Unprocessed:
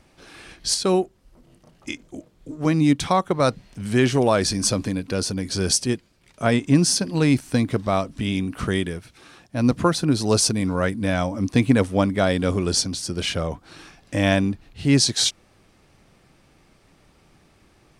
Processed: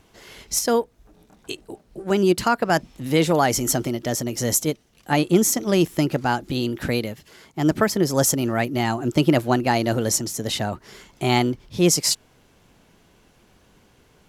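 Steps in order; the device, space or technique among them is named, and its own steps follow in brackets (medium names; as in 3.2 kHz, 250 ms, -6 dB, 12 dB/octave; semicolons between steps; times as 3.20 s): nightcore (tape speed +26%)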